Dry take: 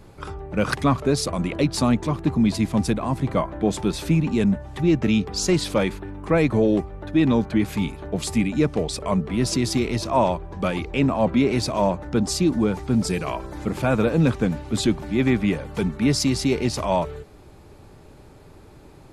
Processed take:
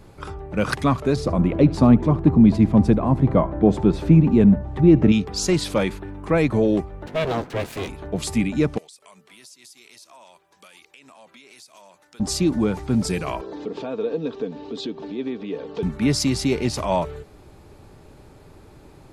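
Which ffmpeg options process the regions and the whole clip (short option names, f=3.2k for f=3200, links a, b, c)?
-filter_complex "[0:a]asettb=1/sr,asplit=3[a][b][c];[a]atrim=end=1.164[d];[b]atrim=start=1.16:end=5.12,asetpts=PTS-STARTPTS,afade=t=in:d=0.004:c=qsin,afade=t=out:st=3.956:d=0.004:c=qsin,lowpass=f=3.4k:p=1,tiltshelf=f=1.3k:g=6.5,aecho=1:1:74:0.0944,atrim=end_sample=174636[e];[c]atrim=start=5.116[f];[d][e]acrossfade=d=0.004:c1=hsin:c2=qsin[g];[g][f]acrossfade=d=0.004:c1=qsin:c2=hsin,asettb=1/sr,asplit=3[h][i][j];[h]atrim=end=7.064[k];[i]atrim=start=7.06:end=7.89,asetpts=PTS-STARTPTS,afade=t=in:d=0.004:c=qsin,afade=t=out:st=0.826:d=0.004:c=qsin,asplit=2[l][m];[m]adelay=16,volume=-13.5dB[n];[l][n]amix=inputs=2:normalize=0,atrim=end_sample=36603,aeval=exprs='abs(val(0))':c=same,highpass=f=82:p=1[o];[j]atrim=start=7.886[p];[k][o]acrossfade=d=0.004:c1=hsin:c2=qsin[q];[q][p]acrossfade=d=0.004:c1=qsin:c2=hsin,asettb=1/sr,asplit=3[r][s][t];[r]atrim=end=8.784[u];[s]atrim=start=8.78:end=12.2,asetpts=PTS-STARTPTS,afade=t=in:d=0.004:c=qsin,afade=t=out:st=3.416:d=0.004:c=qsin,highpass=89,aderivative,acompressor=threshold=-43dB:ratio=12:attack=3.2:release=140:knee=1:detection=peak[v];[t]atrim=start=12.196[w];[u][v]acrossfade=d=0.004:c1=hsin:c2=qsin[x];[x][w]acrossfade=d=0.004:c1=qsin:c2=hsin,asettb=1/sr,asplit=3[y][z][aa];[y]atrim=end=13.414[ab];[z]atrim=start=13.41:end=15.83,asetpts=PTS-STARTPTS,afade=t=in:d=0.004:c=qsin,afade=t=out:st=2.416:d=0.004:c=qsin,aecho=1:1:4.4:0.39,atrim=end_sample=106722,acompressor=threshold=-31dB:ratio=2.5:attack=3.2:release=140:knee=1:detection=peak,highpass=200,equalizer=f=210:t=q:w=4:g=-4,equalizer=f=300:t=q:w=4:g=6,equalizer=f=440:t=q:w=4:g=10,equalizer=f=1.4k:t=q:w=4:g=-6,equalizer=f=2.1k:t=q:w=4:g=-8,equalizer=f=3.7k:t=q:w=4:g=4,lowpass=f=5.3k:w=0.5412,lowpass=f=5.3k:w=1.3066[ac];[aa]atrim=start=15.826[ad];[ab][ac]acrossfade=d=0.004:c1=hsin:c2=qsin[ae];[ae][ad]acrossfade=d=0.004:c1=qsin:c2=hsin"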